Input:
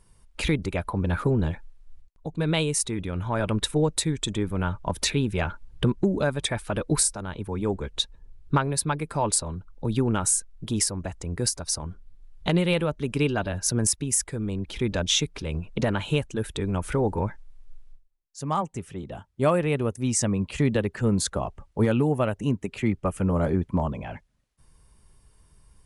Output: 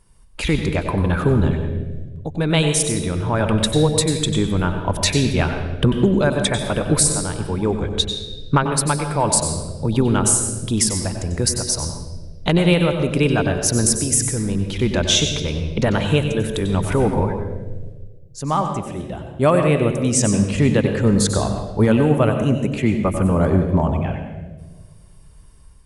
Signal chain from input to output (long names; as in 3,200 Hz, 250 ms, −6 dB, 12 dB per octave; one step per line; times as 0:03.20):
automatic gain control gain up to 4 dB
on a send: convolution reverb RT60 1.4 s, pre-delay 92 ms, DRR 5.5 dB
on the sum: level +2 dB